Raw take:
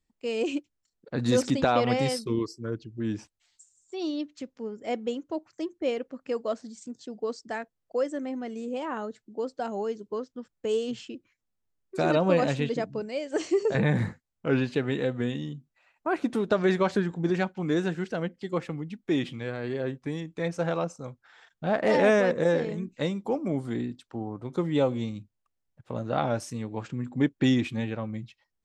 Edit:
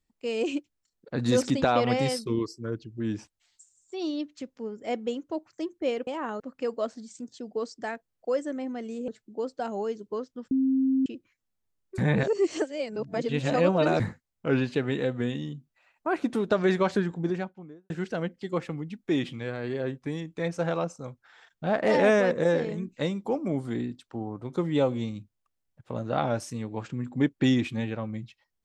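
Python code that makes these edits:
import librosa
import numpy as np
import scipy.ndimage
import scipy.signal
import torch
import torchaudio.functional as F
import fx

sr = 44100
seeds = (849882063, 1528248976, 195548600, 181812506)

y = fx.studio_fade_out(x, sr, start_s=17.01, length_s=0.89)
y = fx.edit(y, sr, fx.move(start_s=8.75, length_s=0.33, to_s=6.07),
    fx.bleep(start_s=10.51, length_s=0.55, hz=265.0, db=-20.5),
    fx.reverse_span(start_s=11.98, length_s=2.02), tone=tone)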